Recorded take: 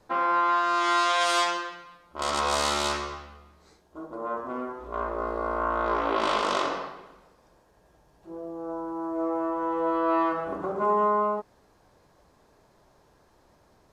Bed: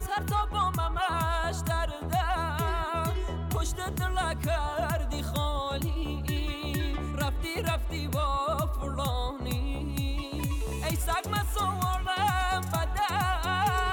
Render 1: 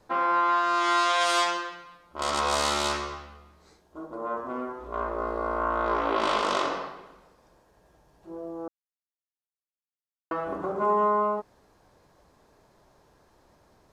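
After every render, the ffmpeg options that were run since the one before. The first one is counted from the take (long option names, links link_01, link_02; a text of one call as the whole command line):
ffmpeg -i in.wav -filter_complex "[0:a]asplit=3[link_01][link_02][link_03];[link_01]atrim=end=8.68,asetpts=PTS-STARTPTS,afade=type=out:start_time=8.676:duration=0.004:curve=hsin[link_04];[link_02]atrim=start=8.68:end=10.31,asetpts=PTS-STARTPTS,volume=0[link_05];[link_03]atrim=start=10.31,asetpts=PTS-STARTPTS,afade=type=in:duration=0.004:curve=hsin[link_06];[link_04][link_05][link_06]concat=n=3:v=0:a=1" out.wav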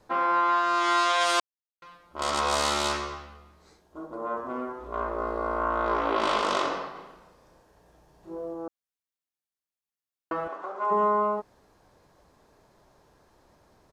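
ffmpeg -i in.wav -filter_complex "[0:a]asplit=3[link_01][link_02][link_03];[link_01]afade=type=out:start_time=6.94:duration=0.02[link_04];[link_02]asplit=2[link_05][link_06];[link_06]adelay=34,volume=-3dB[link_07];[link_05][link_07]amix=inputs=2:normalize=0,afade=type=in:start_time=6.94:duration=0.02,afade=type=out:start_time=8.53:duration=0.02[link_08];[link_03]afade=type=in:start_time=8.53:duration=0.02[link_09];[link_04][link_08][link_09]amix=inputs=3:normalize=0,asplit=3[link_10][link_11][link_12];[link_10]afade=type=out:start_time=10.47:duration=0.02[link_13];[link_11]highpass=740,lowpass=6500,afade=type=in:start_time=10.47:duration=0.02,afade=type=out:start_time=10.9:duration=0.02[link_14];[link_12]afade=type=in:start_time=10.9:duration=0.02[link_15];[link_13][link_14][link_15]amix=inputs=3:normalize=0,asplit=3[link_16][link_17][link_18];[link_16]atrim=end=1.4,asetpts=PTS-STARTPTS,afade=type=out:start_time=1.396:duration=0.004:curve=hsin[link_19];[link_17]atrim=start=1.4:end=1.82,asetpts=PTS-STARTPTS,volume=0[link_20];[link_18]atrim=start=1.82,asetpts=PTS-STARTPTS,afade=type=in:duration=0.004:curve=hsin[link_21];[link_19][link_20][link_21]concat=n=3:v=0:a=1" out.wav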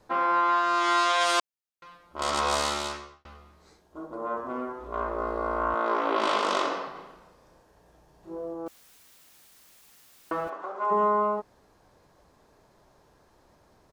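ffmpeg -i in.wav -filter_complex "[0:a]asettb=1/sr,asplit=3[link_01][link_02][link_03];[link_01]atrim=end=5.744[link_04];[link_02]atrim=start=5.74:end=6.87,asetpts=PTS-STARTPTS,afade=type=in:duration=0.004:curve=qsin,afade=type=out:start_time=1.126:duration=0.004:curve=qsin,highpass=frequency=190:width=0.5412,highpass=frequency=190:width=1.3066[link_05];[link_03]atrim=start=6.866[link_06];[link_04][link_05]acrossfade=duration=0.004:curve1=hsin:curve2=qsin[link_07];[link_07][link_06]acrossfade=duration=0.004:curve1=qsin:curve2=hsin,asettb=1/sr,asplit=3[link_08][link_09][link_10];[link_08]atrim=end=8.664[link_11];[link_09]atrim=start=8.66:end=10.5,asetpts=PTS-STARTPTS,afade=type=in:duration=0.004:curve=qsin,afade=type=out:start_time=1.836:duration=0.004:curve=qsin,aeval=exprs='val(0)+0.5*0.00447*sgn(val(0))':channel_layout=same[link_12];[link_10]atrim=start=10.496[link_13];[link_11][link_12]acrossfade=duration=0.004:curve1=hsin:curve2=qsin[link_14];[link_14][link_13]acrossfade=duration=0.004:curve1=qsin:curve2=hsin,asplit=2[link_15][link_16];[link_15]atrim=end=3.25,asetpts=PTS-STARTPTS,afade=type=out:start_time=2.51:duration=0.74[link_17];[link_16]atrim=start=3.25,asetpts=PTS-STARTPTS,afade=type=in:duration=0.004:curve=hsin[link_18];[link_17][link_18]concat=n=2:v=0:a=1" out.wav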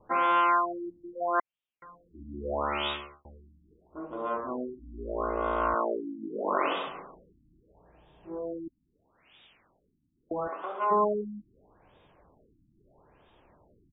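ffmpeg -i in.wav -af "aexciter=amount=3.8:drive=5:freq=2500,afftfilt=real='re*lt(b*sr/1024,320*pow(3800/320,0.5+0.5*sin(2*PI*0.77*pts/sr)))':imag='im*lt(b*sr/1024,320*pow(3800/320,0.5+0.5*sin(2*PI*0.77*pts/sr)))':win_size=1024:overlap=0.75" out.wav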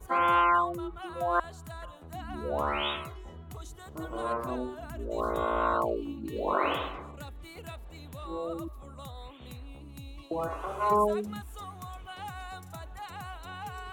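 ffmpeg -i in.wav -i bed.wav -filter_complex "[1:a]volume=-14dB[link_01];[0:a][link_01]amix=inputs=2:normalize=0" out.wav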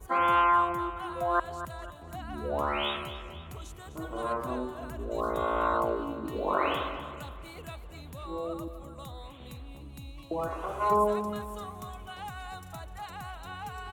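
ffmpeg -i in.wav -af "aecho=1:1:253|506|759|1012|1265:0.251|0.118|0.0555|0.0261|0.0123" out.wav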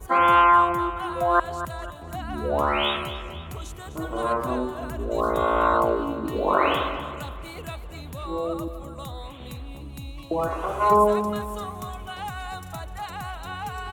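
ffmpeg -i in.wav -af "volume=7dB" out.wav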